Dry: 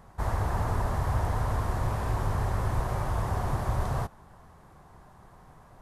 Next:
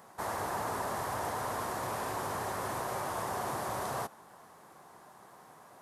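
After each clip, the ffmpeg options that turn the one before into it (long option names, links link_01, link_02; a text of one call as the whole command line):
ffmpeg -i in.wav -filter_complex "[0:a]highpass=280,highshelf=frequency=5400:gain=8,asplit=2[link_01][link_02];[link_02]alimiter=level_in=6dB:limit=-24dB:level=0:latency=1,volume=-6dB,volume=0dB[link_03];[link_01][link_03]amix=inputs=2:normalize=0,volume=-5dB" out.wav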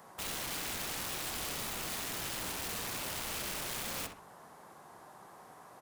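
ffmpeg -i in.wav -filter_complex "[0:a]aeval=exprs='(mod(44.7*val(0)+1,2)-1)/44.7':channel_layout=same,acrossover=split=310|3000[link_01][link_02][link_03];[link_02]acompressor=threshold=-49dB:ratio=1.5[link_04];[link_01][link_04][link_03]amix=inputs=3:normalize=0,asplit=2[link_05][link_06];[link_06]adelay=65,lowpass=frequency=2700:poles=1,volume=-6dB,asplit=2[link_07][link_08];[link_08]adelay=65,lowpass=frequency=2700:poles=1,volume=0.37,asplit=2[link_09][link_10];[link_10]adelay=65,lowpass=frequency=2700:poles=1,volume=0.37,asplit=2[link_11][link_12];[link_12]adelay=65,lowpass=frequency=2700:poles=1,volume=0.37[link_13];[link_07][link_09][link_11][link_13]amix=inputs=4:normalize=0[link_14];[link_05][link_14]amix=inputs=2:normalize=0" out.wav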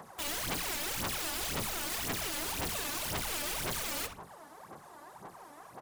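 ffmpeg -i in.wav -af "aphaser=in_gain=1:out_gain=1:delay=3.5:decay=0.68:speed=1.9:type=sinusoidal" out.wav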